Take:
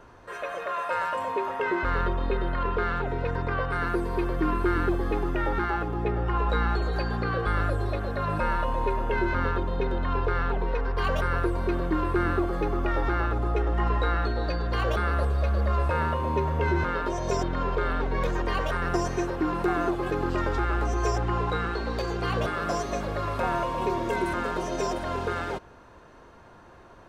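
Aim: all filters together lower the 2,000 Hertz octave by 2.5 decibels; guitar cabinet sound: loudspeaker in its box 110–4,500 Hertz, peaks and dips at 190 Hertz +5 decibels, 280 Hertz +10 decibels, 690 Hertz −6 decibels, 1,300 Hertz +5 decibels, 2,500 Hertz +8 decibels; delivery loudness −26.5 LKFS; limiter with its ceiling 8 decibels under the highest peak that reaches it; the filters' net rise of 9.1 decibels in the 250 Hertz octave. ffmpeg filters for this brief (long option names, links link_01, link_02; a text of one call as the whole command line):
ffmpeg -i in.wav -af "equalizer=frequency=250:width_type=o:gain=6,equalizer=frequency=2000:width_type=o:gain=-7.5,alimiter=limit=-19.5dB:level=0:latency=1,highpass=110,equalizer=frequency=190:width_type=q:width=4:gain=5,equalizer=frequency=280:width_type=q:width=4:gain=10,equalizer=frequency=690:width_type=q:width=4:gain=-6,equalizer=frequency=1300:width_type=q:width=4:gain=5,equalizer=frequency=2500:width_type=q:width=4:gain=8,lowpass=frequency=4500:width=0.5412,lowpass=frequency=4500:width=1.3066,volume=1dB" out.wav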